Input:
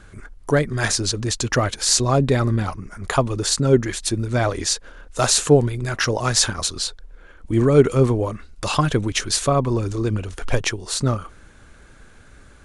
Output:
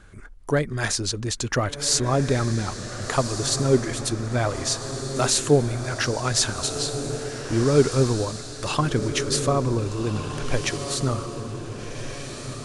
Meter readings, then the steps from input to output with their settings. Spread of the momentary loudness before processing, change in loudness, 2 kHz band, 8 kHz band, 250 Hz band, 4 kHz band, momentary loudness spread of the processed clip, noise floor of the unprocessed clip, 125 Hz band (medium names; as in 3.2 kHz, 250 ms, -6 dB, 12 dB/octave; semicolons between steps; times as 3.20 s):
10 LU, -4.0 dB, -3.5 dB, -3.5 dB, -3.0 dB, -3.0 dB, 11 LU, -47 dBFS, -3.5 dB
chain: echo that smears into a reverb 1529 ms, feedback 41%, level -8 dB; trim -4 dB